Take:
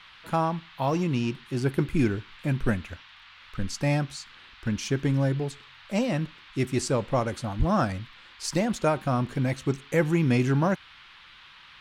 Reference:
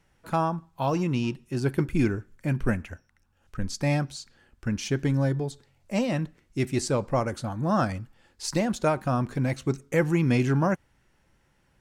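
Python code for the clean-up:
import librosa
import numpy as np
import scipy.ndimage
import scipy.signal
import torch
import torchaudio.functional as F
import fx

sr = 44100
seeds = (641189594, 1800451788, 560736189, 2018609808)

y = fx.highpass(x, sr, hz=140.0, slope=24, at=(7.58, 7.7), fade=0.02)
y = fx.noise_reduce(y, sr, print_start_s=11.18, print_end_s=11.68, reduce_db=15.0)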